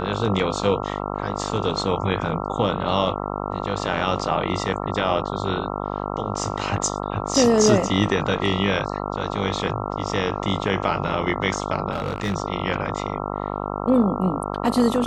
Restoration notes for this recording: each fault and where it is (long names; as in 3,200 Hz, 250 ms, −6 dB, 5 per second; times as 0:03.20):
mains buzz 50 Hz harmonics 27 −28 dBFS
0:11.91–0:12.36: clipping −19.5 dBFS